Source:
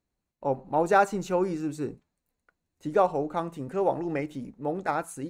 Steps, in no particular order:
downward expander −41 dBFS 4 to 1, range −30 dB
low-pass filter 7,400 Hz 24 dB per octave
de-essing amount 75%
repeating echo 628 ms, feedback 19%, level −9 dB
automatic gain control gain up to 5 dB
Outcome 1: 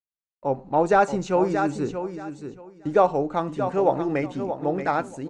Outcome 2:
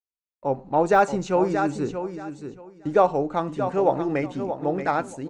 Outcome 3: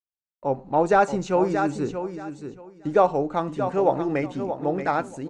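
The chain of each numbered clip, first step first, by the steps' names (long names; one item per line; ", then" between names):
downward expander, then automatic gain control, then repeating echo, then de-essing, then low-pass filter
low-pass filter, then downward expander, then automatic gain control, then repeating echo, then de-essing
automatic gain control, then downward expander, then repeating echo, then de-essing, then low-pass filter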